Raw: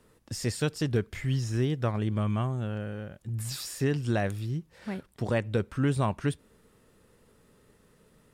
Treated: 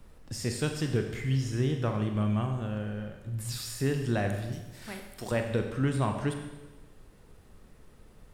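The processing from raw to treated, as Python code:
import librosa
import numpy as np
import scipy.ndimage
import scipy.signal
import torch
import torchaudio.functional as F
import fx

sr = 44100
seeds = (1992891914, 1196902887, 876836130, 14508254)

y = fx.riaa(x, sr, side='recording', at=(4.52, 5.32))
y = fx.rev_schroeder(y, sr, rt60_s=1.1, comb_ms=30, drr_db=4.5)
y = fx.dmg_noise_colour(y, sr, seeds[0], colour='brown', level_db=-50.0)
y = F.gain(torch.from_numpy(y), -2.0).numpy()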